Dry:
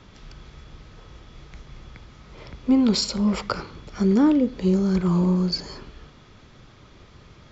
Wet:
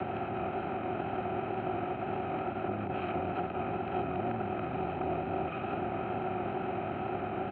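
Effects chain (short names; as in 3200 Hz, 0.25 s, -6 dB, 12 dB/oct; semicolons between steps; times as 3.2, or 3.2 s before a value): per-bin compression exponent 0.2; limiter -8.5 dBFS, peak gain reduction 8.5 dB; frequency shift +120 Hz; pitch shift -10.5 st; double band-pass 990 Hz, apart 0.92 oct; wow and flutter 25 cents; harmoniser -12 st -2 dB, -5 st -17 dB, +4 st -15 dB; air absorption 420 m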